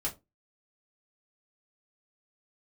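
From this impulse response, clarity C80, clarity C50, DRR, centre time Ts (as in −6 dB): 23.0 dB, 16.5 dB, −3.5 dB, 14 ms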